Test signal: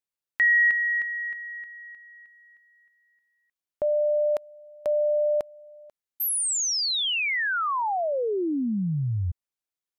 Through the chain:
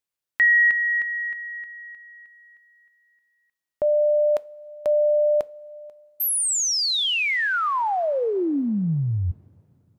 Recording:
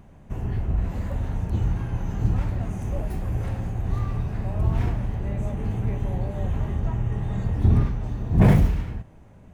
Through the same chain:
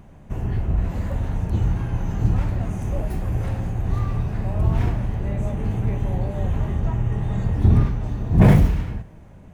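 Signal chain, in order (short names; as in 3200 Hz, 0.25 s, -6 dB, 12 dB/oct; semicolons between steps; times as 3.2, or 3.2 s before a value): two-slope reverb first 0.31 s, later 3 s, from -18 dB, DRR 18 dB; gain +3 dB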